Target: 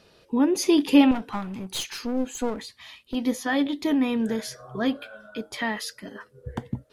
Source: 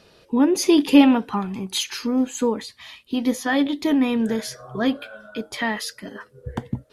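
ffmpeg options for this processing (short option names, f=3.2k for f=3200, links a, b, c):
-filter_complex "[0:a]asettb=1/sr,asplit=3[a][b][c];[a]atrim=end=1.114[d];[b]atrim=start=1.11:end=3.15,asetpts=PTS-STARTPTS,afade=t=in:d=0.004:c=qsin,afade=t=out:st=2.036:d=0.004:c=qsin,aeval=exprs='clip(val(0),-1,0.0335)':c=same[e];[c]atrim=start=3.146[f];[d][e]acrossfade=d=0.004:c1=hsin:c2=qsin[g];[g][f]acrossfade=d=0.004:c1=qsin:c2=hsin,volume=-3.5dB"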